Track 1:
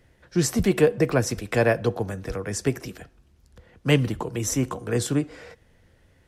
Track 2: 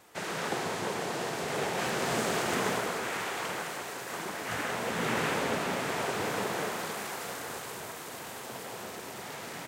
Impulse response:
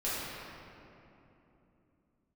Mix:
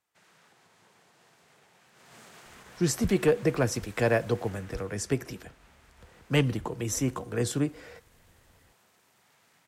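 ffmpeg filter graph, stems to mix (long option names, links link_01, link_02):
-filter_complex "[0:a]asoftclip=type=hard:threshold=-10dB,adelay=2450,volume=-4dB[link_01];[1:a]equalizer=frequency=400:width_type=o:width=2.1:gain=-8,alimiter=level_in=5dB:limit=-24dB:level=0:latency=1:release=276,volume=-5dB,volume=-12.5dB,afade=type=in:start_time=1.94:duration=0.26:silence=0.316228,afade=type=out:start_time=4.52:duration=0.53:silence=0.354813[link_02];[link_01][link_02]amix=inputs=2:normalize=0"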